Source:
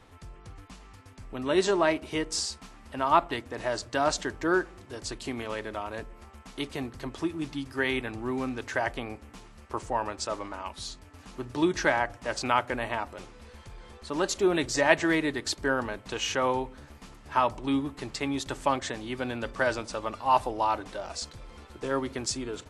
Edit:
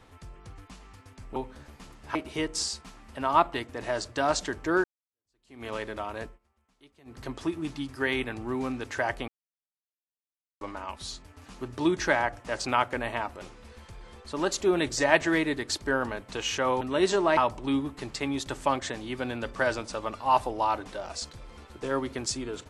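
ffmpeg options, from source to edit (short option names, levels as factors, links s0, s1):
-filter_complex "[0:a]asplit=10[s0][s1][s2][s3][s4][s5][s6][s7][s8][s9];[s0]atrim=end=1.362[s10];[s1]atrim=start=16.578:end=17.372[s11];[s2]atrim=start=1.918:end=4.61,asetpts=PTS-STARTPTS,afade=t=out:st=2.688:d=0.004:c=hsin[s12];[s3]atrim=start=4.61:end=6.16,asetpts=PTS-STARTPTS,afade=t=in:d=0.83:c=exp,afade=t=out:st=1.41:d=0.14:silence=0.0668344[s13];[s4]atrim=start=6.16:end=6.82,asetpts=PTS-STARTPTS,volume=0.0668[s14];[s5]atrim=start=6.82:end=9.05,asetpts=PTS-STARTPTS,afade=t=in:d=0.14:silence=0.0668344,afade=t=out:st=2.226:d=0.004:c=hsin[s15];[s6]atrim=start=9.05:end=10.38,asetpts=PTS-STARTPTS,volume=0[s16];[s7]atrim=start=10.38:end=16.582,asetpts=PTS-STARTPTS,afade=t=in:d=0.004:c=hsin[s17];[s8]atrim=start=1.358:end=1.922[s18];[s9]atrim=start=17.368[s19];[s10][s11]acrossfade=d=0.004:c1=hsin:c2=hsin[s20];[s12][s13][s14][s15][s16][s17]concat=n=6:v=0:a=1[s21];[s20][s21]acrossfade=d=0.004:c1=hsin:c2=hsin[s22];[s22][s18]acrossfade=d=0.004:c1=hsin:c2=hsin[s23];[s23][s19]acrossfade=d=0.004:c1=hsin:c2=hsin"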